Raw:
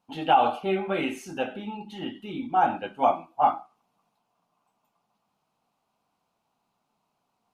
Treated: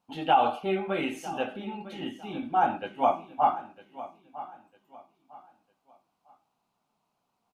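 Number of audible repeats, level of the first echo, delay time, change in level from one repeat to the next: 2, -16.0 dB, 953 ms, -10.0 dB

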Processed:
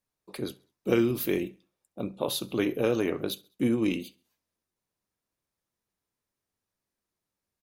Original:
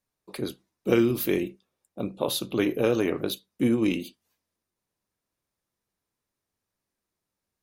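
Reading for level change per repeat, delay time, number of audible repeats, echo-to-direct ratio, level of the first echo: -7.0 dB, 67 ms, 2, -23.0 dB, -24.0 dB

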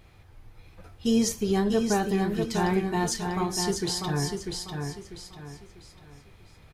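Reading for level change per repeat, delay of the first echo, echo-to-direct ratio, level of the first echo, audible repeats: -9.5 dB, 645 ms, -4.5 dB, -5.0 dB, 4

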